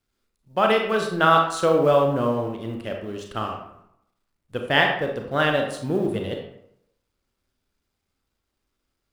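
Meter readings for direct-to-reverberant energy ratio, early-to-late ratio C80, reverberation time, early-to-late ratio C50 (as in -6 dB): 2.0 dB, 7.5 dB, 0.75 s, 5.0 dB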